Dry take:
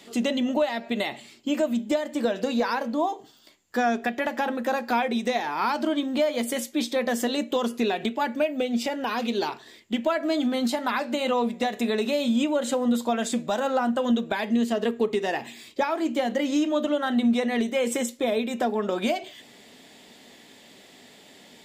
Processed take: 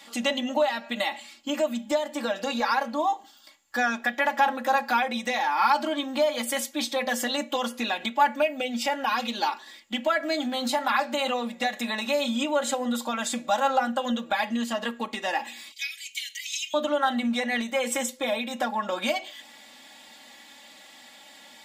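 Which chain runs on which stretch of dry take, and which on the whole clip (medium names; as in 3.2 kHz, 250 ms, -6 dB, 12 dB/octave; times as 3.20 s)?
15.72–16.74 s: elliptic high-pass 2.2 kHz, stop band 50 dB + peaking EQ 13 kHz +8 dB 2.2 oct
whole clip: resonant low shelf 590 Hz -8.5 dB, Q 1.5; comb 3.6 ms, depth 86%; de-hum 128.4 Hz, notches 4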